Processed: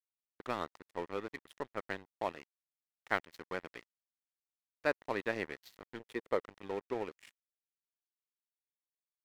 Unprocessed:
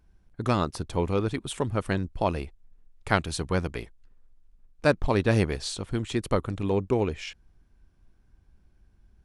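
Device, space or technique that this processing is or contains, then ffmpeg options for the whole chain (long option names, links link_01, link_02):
pocket radio on a weak battery: -filter_complex "[0:a]highpass=340,lowpass=3800,aeval=exprs='sgn(val(0))*max(abs(val(0))-0.015,0)':channel_layout=same,equalizer=frequency=1900:width_type=o:width=0.26:gain=7.5,asettb=1/sr,asplit=3[link_01][link_02][link_03];[link_01]atrim=end=5.994[link_04];[link_02]atrim=start=5.99:end=6.41,asetpts=PTS-STARTPTS,afade=type=in:duration=0.004:curve=qsin,afade=type=out:start_time=0.416:duration=0.004:curve=qsin,equalizer=frequency=460:width_type=o:width=0.68:gain=7.5[link_05];[link_03]atrim=start=6.406[link_06];[link_04][link_05]acrossfade=duration=0.004:curve1=hsin:curve2=qsin[link_07];[link_07][link_06]acrossfade=duration=0.004:curve1=qsin:curve2=hsin,volume=-8.5dB"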